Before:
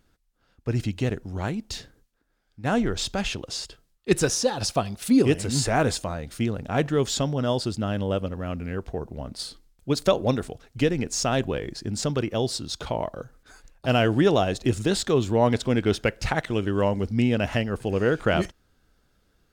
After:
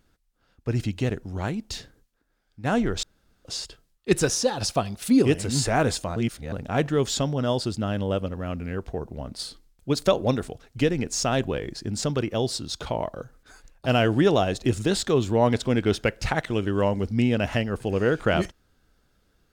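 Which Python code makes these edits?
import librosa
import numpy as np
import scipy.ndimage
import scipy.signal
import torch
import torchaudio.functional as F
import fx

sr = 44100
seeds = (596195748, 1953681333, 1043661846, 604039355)

y = fx.edit(x, sr, fx.room_tone_fill(start_s=3.03, length_s=0.42),
    fx.reverse_span(start_s=6.16, length_s=0.36), tone=tone)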